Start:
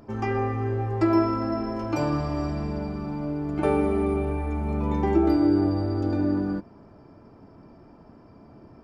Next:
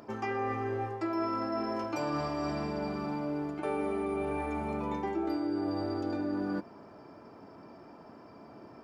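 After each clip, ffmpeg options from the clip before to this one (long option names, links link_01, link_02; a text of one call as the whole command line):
ffmpeg -i in.wav -af "highpass=frequency=470:poles=1,areverse,acompressor=threshold=-34dB:ratio=6,areverse,volume=4dB" out.wav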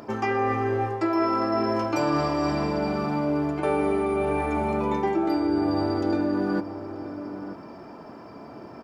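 ffmpeg -i in.wav -filter_complex "[0:a]asplit=2[link_01][link_02];[link_02]adelay=932.9,volume=-11dB,highshelf=frequency=4000:gain=-21[link_03];[link_01][link_03]amix=inputs=2:normalize=0,volume=8.5dB" out.wav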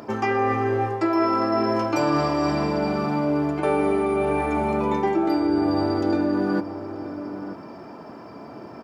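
ffmpeg -i in.wav -af "highpass=70,volume=2.5dB" out.wav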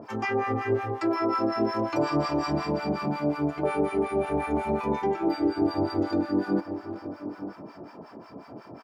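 ffmpeg -i in.wav -filter_complex "[0:a]acrossover=split=890[link_01][link_02];[link_01]aeval=exprs='val(0)*(1-1/2+1/2*cos(2*PI*5.5*n/s))':channel_layout=same[link_03];[link_02]aeval=exprs='val(0)*(1-1/2-1/2*cos(2*PI*5.5*n/s))':channel_layout=same[link_04];[link_03][link_04]amix=inputs=2:normalize=0,asplit=2[link_05][link_06];[link_06]adelay=390,highpass=300,lowpass=3400,asoftclip=type=hard:threshold=-21dB,volume=-12dB[link_07];[link_05][link_07]amix=inputs=2:normalize=0" out.wav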